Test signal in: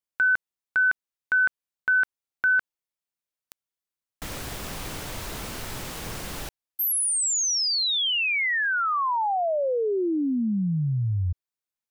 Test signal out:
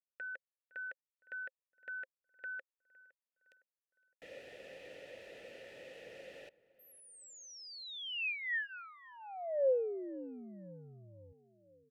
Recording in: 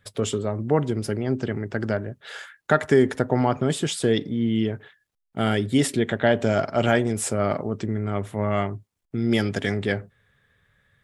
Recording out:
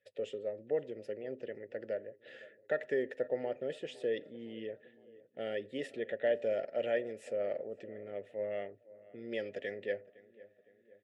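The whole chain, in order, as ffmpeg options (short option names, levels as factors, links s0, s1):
-filter_complex "[0:a]asplit=3[s0][s1][s2];[s0]bandpass=f=530:t=q:w=8,volume=1[s3];[s1]bandpass=f=1840:t=q:w=8,volume=0.501[s4];[s2]bandpass=f=2480:t=q:w=8,volume=0.355[s5];[s3][s4][s5]amix=inputs=3:normalize=0,bandreject=f=1600:w=8.1,asplit=2[s6][s7];[s7]adelay=511,lowpass=f=1900:p=1,volume=0.1,asplit=2[s8][s9];[s9]adelay=511,lowpass=f=1900:p=1,volume=0.55,asplit=2[s10][s11];[s11]adelay=511,lowpass=f=1900:p=1,volume=0.55,asplit=2[s12][s13];[s13]adelay=511,lowpass=f=1900:p=1,volume=0.55[s14];[s6][s8][s10][s12][s14]amix=inputs=5:normalize=0,volume=0.75"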